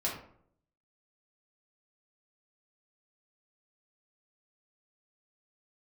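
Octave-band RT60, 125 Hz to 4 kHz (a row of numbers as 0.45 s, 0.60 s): 0.85 s, 0.75 s, 0.70 s, 0.60 s, 0.45 s, 0.35 s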